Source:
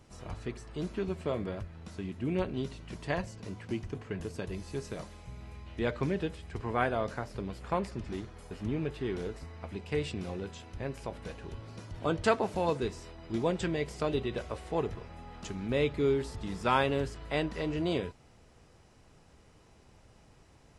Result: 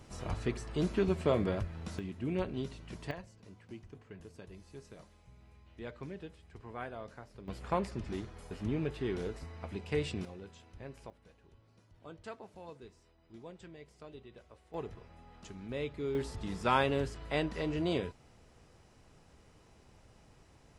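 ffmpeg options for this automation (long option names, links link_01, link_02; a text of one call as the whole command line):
ffmpeg -i in.wav -af "asetnsamples=nb_out_samples=441:pad=0,asendcmd='1.99 volume volume -3dB;3.11 volume volume -13dB;7.48 volume volume -1dB;10.25 volume volume -10dB;11.1 volume volume -19.5dB;14.74 volume volume -9dB;16.15 volume volume -1.5dB',volume=4dB" out.wav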